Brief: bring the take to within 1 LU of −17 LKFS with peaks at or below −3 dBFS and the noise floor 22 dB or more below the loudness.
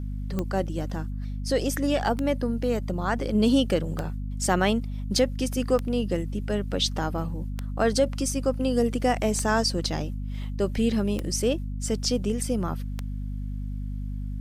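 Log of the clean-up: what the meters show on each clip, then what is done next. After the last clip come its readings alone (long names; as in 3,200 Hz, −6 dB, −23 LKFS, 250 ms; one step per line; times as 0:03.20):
number of clicks 8; mains hum 50 Hz; hum harmonics up to 250 Hz; level of the hum −29 dBFS; integrated loudness −27.0 LKFS; sample peak −10.0 dBFS; target loudness −17.0 LKFS
→ click removal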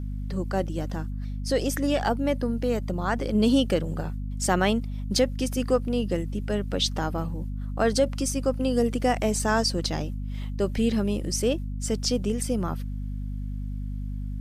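number of clicks 0; mains hum 50 Hz; hum harmonics up to 250 Hz; level of the hum −29 dBFS
→ hum removal 50 Hz, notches 5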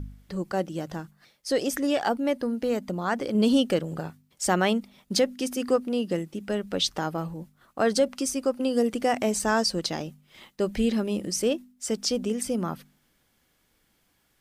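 mains hum none found; integrated loudness −27.0 LKFS; sample peak −11.0 dBFS; target loudness −17.0 LKFS
→ level +10 dB
brickwall limiter −3 dBFS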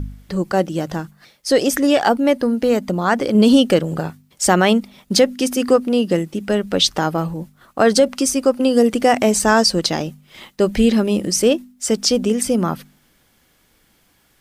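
integrated loudness −17.5 LKFS; sample peak −3.0 dBFS; background noise floor −59 dBFS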